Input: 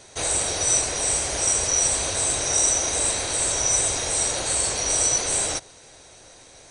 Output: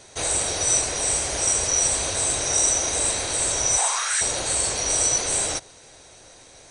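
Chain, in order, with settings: 3.77–4.2 resonant high-pass 760 Hz -> 1700 Hz, resonance Q 5.5

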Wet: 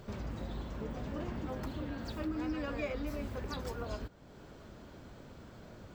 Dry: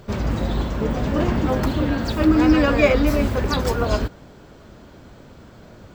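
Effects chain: compressor 2:1, threshold -39 dBFS, peak gain reduction 15.5 dB; gain -7 dB

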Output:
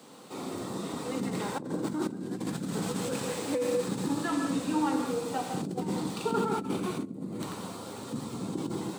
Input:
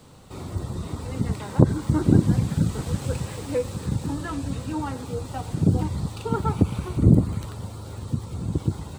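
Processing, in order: non-linear reverb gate 0.24 s flat, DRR 2 dB; negative-ratio compressor -24 dBFS, ratio -1; HPF 190 Hz 24 dB/oct; gain -3 dB

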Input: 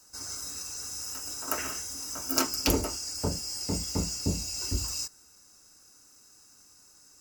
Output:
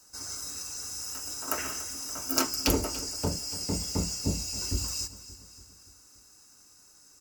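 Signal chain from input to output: feedback echo 0.287 s, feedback 57%, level -16 dB

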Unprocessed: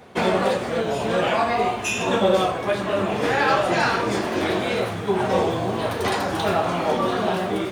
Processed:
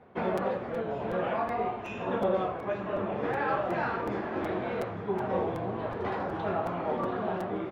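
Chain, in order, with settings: LPF 1700 Hz 12 dB/oct; echo 0.853 s -13.5 dB; crackling interface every 0.37 s, samples 256, repeat, from 0.37; gain -9 dB

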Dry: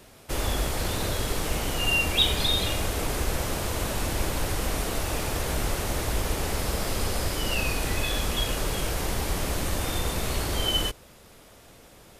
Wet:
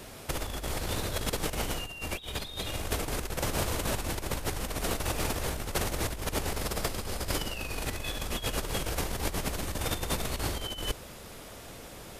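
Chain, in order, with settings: negative-ratio compressor -31 dBFS, ratio -0.5

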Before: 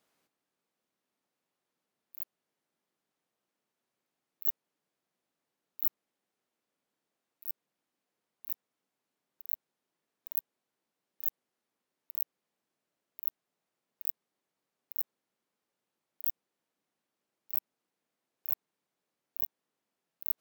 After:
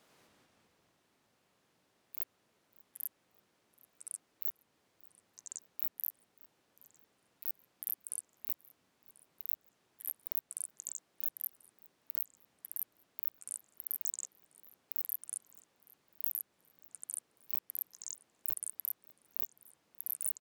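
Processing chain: compressor 6:1, threshold -35 dBFS, peak gain reduction 14 dB; high shelf 11000 Hz -7 dB; feedback echo 0.583 s, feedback 41%, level -23.5 dB; echoes that change speed 93 ms, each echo -5 st, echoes 3; gain +10 dB

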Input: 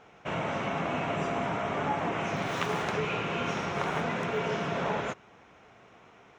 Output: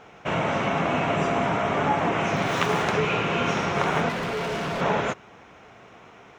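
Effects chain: 4.09–4.81 hard clip -33 dBFS, distortion -15 dB; gain +7 dB

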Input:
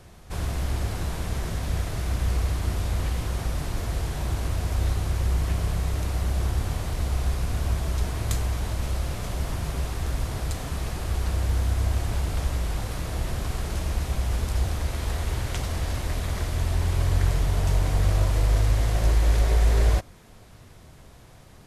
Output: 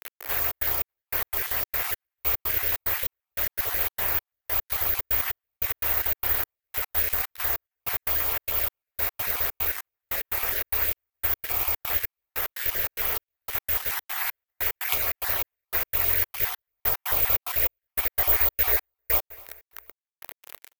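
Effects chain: random spectral dropouts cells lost 31%; in parallel at 0 dB: compressor 20:1, threshold -32 dBFS, peak gain reduction 17.5 dB; on the sum: bit-crush 6-bit; bell 1900 Hz +13 dB 1.7 oct; on a send: feedback echo 0.258 s, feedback 43%, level -21.5 dB; on the sum: careless resampling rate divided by 3×, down none, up zero stuff; step gate "x.xxx.xx..." 141 bpm -60 dB; resonant low shelf 300 Hz -11 dB, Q 1.5; speed mistake 24 fps film run at 25 fps; gain -6 dB

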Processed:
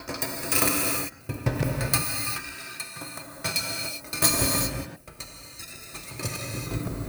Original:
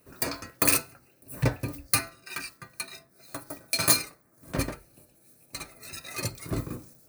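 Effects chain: slices in reverse order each 86 ms, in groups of 5; non-linear reverb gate 0.42 s flat, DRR -0.5 dB

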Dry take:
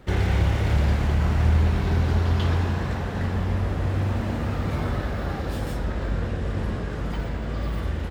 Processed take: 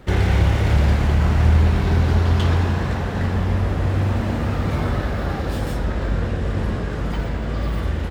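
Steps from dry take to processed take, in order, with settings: tracing distortion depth 0.031 ms; gain +4.5 dB

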